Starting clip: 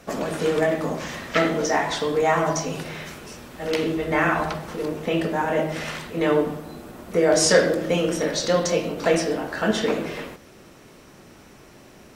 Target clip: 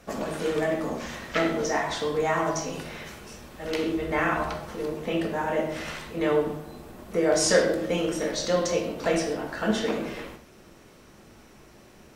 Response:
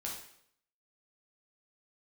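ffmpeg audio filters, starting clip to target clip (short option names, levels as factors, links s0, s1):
-filter_complex "[0:a]asplit=2[s0][s1];[1:a]atrim=start_sample=2205,atrim=end_sample=6174,lowshelf=f=71:g=10[s2];[s1][s2]afir=irnorm=-1:irlink=0,volume=0.841[s3];[s0][s3]amix=inputs=2:normalize=0,volume=0.376"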